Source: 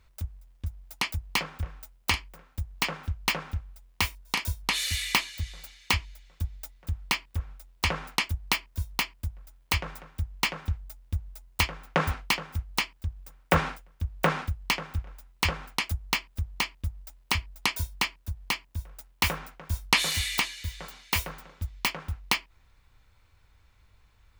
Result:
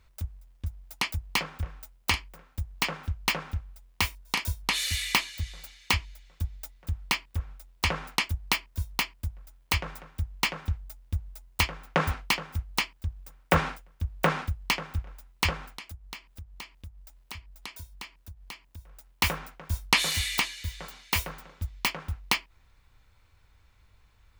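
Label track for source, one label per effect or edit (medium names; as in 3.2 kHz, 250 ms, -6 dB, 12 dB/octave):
15.770000	19.090000	compression 2:1, threshold -49 dBFS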